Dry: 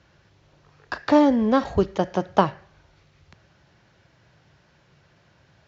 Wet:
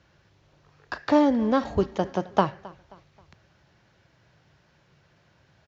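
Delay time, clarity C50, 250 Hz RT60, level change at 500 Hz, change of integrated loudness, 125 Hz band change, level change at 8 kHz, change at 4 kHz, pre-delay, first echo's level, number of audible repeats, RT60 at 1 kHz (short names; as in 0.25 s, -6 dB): 0.266 s, none, none, -3.0 dB, -3.0 dB, -3.0 dB, n/a, -3.0 dB, none, -21.5 dB, 2, none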